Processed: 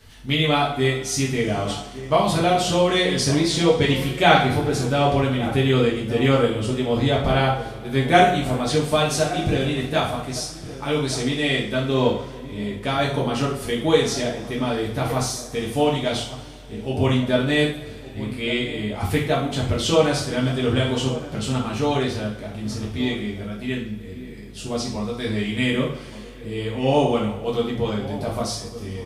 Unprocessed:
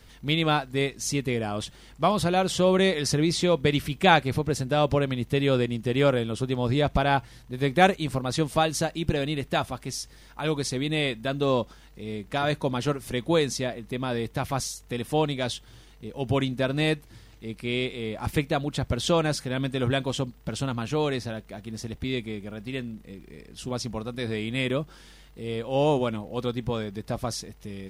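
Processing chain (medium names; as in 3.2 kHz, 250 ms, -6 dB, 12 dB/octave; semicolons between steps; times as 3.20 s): speed mistake 25 fps video run at 24 fps; echo from a far wall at 200 m, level -14 dB; two-slope reverb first 0.48 s, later 3.3 s, from -22 dB, DRR -4.5 dB; trim -1 dB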